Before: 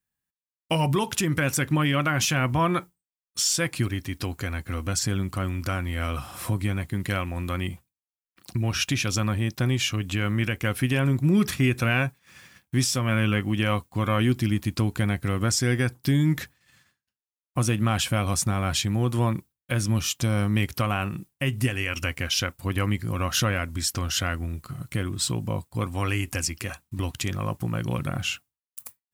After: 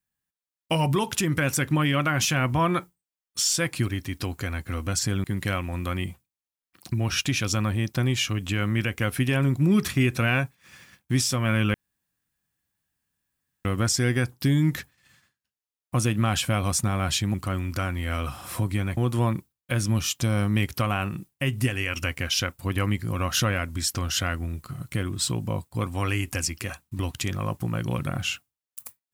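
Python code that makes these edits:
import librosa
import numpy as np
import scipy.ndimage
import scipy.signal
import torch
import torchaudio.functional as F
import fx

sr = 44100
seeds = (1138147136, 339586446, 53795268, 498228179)

y = fx.edit(x, sr, fx.move(start_s=5.24, length_s=1.63, to_s=18.97),
    fx.room_tone_fill(start_s=13.37, length_s=1.91), tone=tone)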